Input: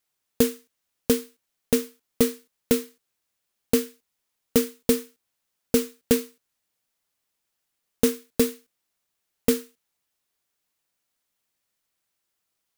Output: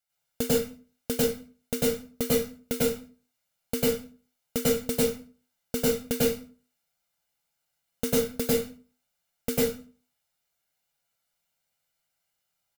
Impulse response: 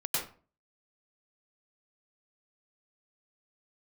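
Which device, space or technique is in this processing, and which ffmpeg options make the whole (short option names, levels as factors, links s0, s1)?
microphone above a desk: -filter_complex "[0:a]aecho=1:1:1.4:0.59[s0];[1:a]atrim=start_sample=2205[s1];[s0][s1]afir=irnorm=-1:irlink=0,volume=0.447"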